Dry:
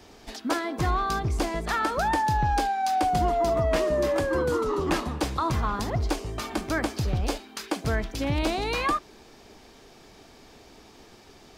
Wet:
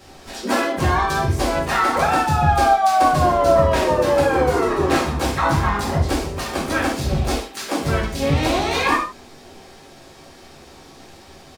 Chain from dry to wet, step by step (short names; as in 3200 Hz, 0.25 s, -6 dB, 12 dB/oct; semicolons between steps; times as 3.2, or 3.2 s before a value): harmoniser -3 st -5 dB, +7 st -7 dB, +12 st -15 dB; non-linear reverb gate 0.17 s falling, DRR -4.5 dB